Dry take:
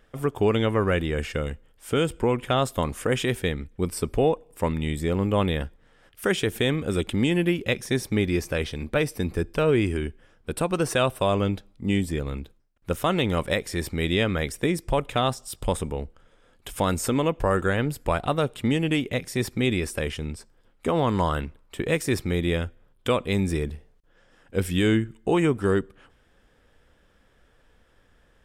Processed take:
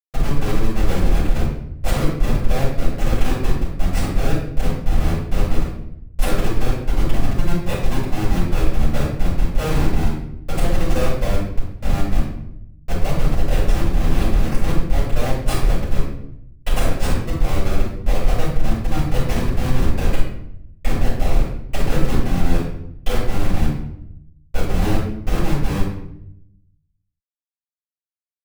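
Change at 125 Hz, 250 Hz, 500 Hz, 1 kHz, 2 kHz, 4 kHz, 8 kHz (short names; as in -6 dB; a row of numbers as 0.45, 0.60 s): +5.5, +1.0, -2.5, +0.5, -1.0, -1.5, +1.0 dB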